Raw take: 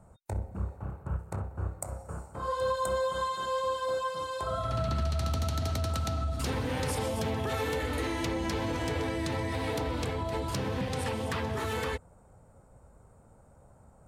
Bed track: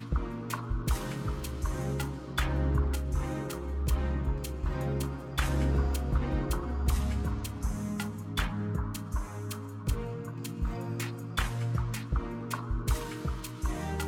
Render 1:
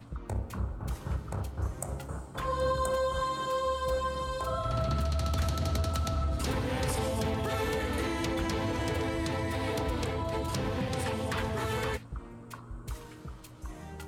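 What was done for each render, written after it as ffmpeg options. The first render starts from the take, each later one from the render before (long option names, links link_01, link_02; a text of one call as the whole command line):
ffmpeg -i in.wav -i bed.wav -filter_complex "[1:a]volume=-10dB[link_01];[0:a][link_01]amix=inputs=2:normalize=0" out.wav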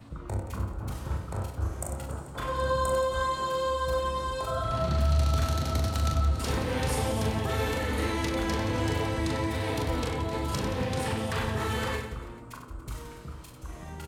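ffmpeg -i in.wav -filter_complex "[0:a]asplit=2[link_01][link_02];[link_02]adelay=28,volume=-11dB[link_03];[link_01][link_03]amix=inputs=2:normalize=0,aecho=1:1:40|96|174.4|284.2|437.8:0.631|0.398|0.251|0.158|0.1" out.wav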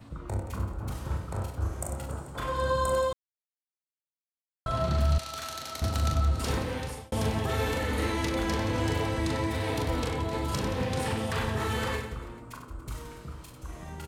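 ffmpeg -i in.wav -filter_complex "[0:a]asettb=1/sr,asplit=3[link_01][link_02][link_03];[link_01]atrim=end=5.184[link_04];[link_02]atrim=start=5.18:end=5.82,asetpts=PTS-STARTPTS,afade=type=in:duration=0.004:curve=qsin,afade=type=out:start_time=0.636:duration=0.004:curve=qsin,highpass=frequency=1500:poles=1[link_05];[link_03]atrim=start=5.816[link_06];[link_04][link_05]acrossfade=duration=0.004:curve1=hsin:curve2=qsin[link_07];[link_07][link_06]acrossfade=duration=0.004:curve1=qsin:curve2=hsin,asplit=4[link_08][link_09][link_10][link_11];[link_08]atrim=end=3.13,asetpts=PTS-STARTPTS,afade=type=out:start_time=3.126:duration=0.004:curve=hsin[link_12];[link_09]atrim=start=3.13:end=4.66,asetpts=PTS-STARTPTS,volume=0[link_13];[link_10]atrim=start=4.66:end=7.12,asetpts=PTS-STARTPTS,afade=type=in:duration=0.004:curve=hsin,afade=type=out:start_time=1.87:duration=0.59[link_14];[link_11]atrim=start=7.12,asetpts=PTS-STARTPTS,afade=type=in:duration=0.004:curve=hsin[link_15];[link_12][link_13][link_14][link_15]concat=n=4:v=0:a=1" out.wav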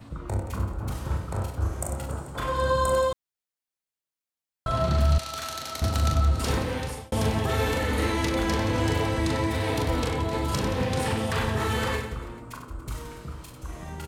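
ffmpeg -i in.wav -af "volume=3.5dB" out.wav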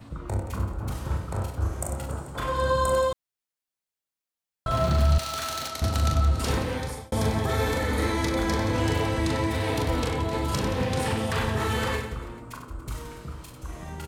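ffmpeg -i in.wav -filter_complex "[0:a]asettb=1/sr,asplit=3[link_01][link_02][link_03];[link_01]atrim=end=4.714[link_04];[link_02]atrim=start=4.71:end=5.68,asetpts=PTS-STARTPTS,afade=type=in:duration=0.004:curve=qsin,afade=type=out:start_time=0.966:duration=0.004:curve=qsin,aeval=exprs='val(0)+0.5*0.0178*sgn(val(0))':channel_layout=same[link_05];[link_03]atrim=start=5.676[link_06];[link_04][link_05]acrossfade=duration=0.004:curve1=hsin:curve2=qsin[link_07];[link_07][link_06]acrossfade=duration=0.004:curve1=qsin:curve2=hsin,asettb=1/sr,asplit=3[link_08][link_09][link_10];[link_08]atrim=end=6.774[link_11];[link_09]atrim=start=6.77:end=8.75,asetpts=PTS-STARTPTS,afade=type=in:duration=0.004:curve=qsin,afade=type=out:start_time=1.976:duration=0.004:curve=qsin,bandreject=frequency=2800:width=5.5[link_12];[link_10]atrim=start=8.746[link_13];[link_11][link_12]acrossfade=duration=0.004:curve1=hsin:curve2=qsin[link_14];[link_14][link_13]acrossfade=duration=0.004:curve1=qsin:curve2=hsin" out.wav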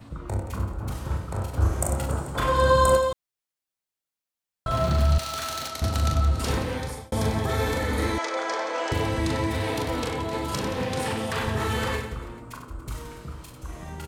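ffmpeg -i in.wav -filter_complex "[0:a]asettb=1/sr,asplit=3[link_01][link_02][link_03];[link_01]atrim=end=1.534[link_04];[link_02]atrim=start=1.53:end=2.97,asetpts=PTS-STARTPTS,afade=type=in:duration=0.004:curve=qsin,afade=type=out:start_time=1.436:duration=0.004:curve=qsin,acontrast=32[link_05];[link_03]atrim=start=2.966[link_06];[link_04][link_05]acrossfade=duration=0.004:curve1=hsin:curve2=qsin[link_07];[link_07][link_06]acrossfade=duration=0.004:curve1=qsin:curve2=hsin,asettb=1/sr,asplit=3[link_08][link_09][link_10];[link_08]atrim=end=8.184[link_11];[link_09]atrim=start=8.18:end=8.92,asetpts=PTS-STARTPTS,afade=type=in:duration=0.004:curve=qsin,afade=type=out:start_time=0.736:duration=0.004:curve=qsin,highpass=frequency=440:width=0.5412,highpass=frequency=440:width=1.3066,equalizer=frequency=660:width_type=q:width=4:gain=5,equalizer=frequency=1300:width_type=q:width=4:gain=5,equalizer=frequency=3900:width_type=q:width=4:gain=-4,lowpass=frequency=7300:width=0.5412,lowpass=frequency=7300:width=1.3066[link_12];[link_10]atrim=start=8.916[link_13];[link_11][link_12]acrossfade=duration=0.004:curve1=hsin:curve2=qsin[link_14];[link_14][link_13]acrossfade=duration=0.004:curve1=qsin:curve2=hsin,asettb=1/sr,asplit=3[link_15][link_16][link_17];[link_15]atrim=end=9.674[link_18];[link_16]atrim=start=9.67:end=11.46,asetpts=PTS-STARTPTS,afade=type=in:duration=0.004:curve=qsin,afade=type=out:start_time=1.786:duration=0.004:curve=qsin,lowshelf=frequency=97:gain=-10[link_19];[link_17]atrim=start=11.456[link_20];[link_18][link_19]acrossfade=duration=0.004:curve1=hsin:curve2=qsin[link_21];[link_21][link_20]acrossfade=duration=0.004:curve1=qsin:curve2=hsin" out.wav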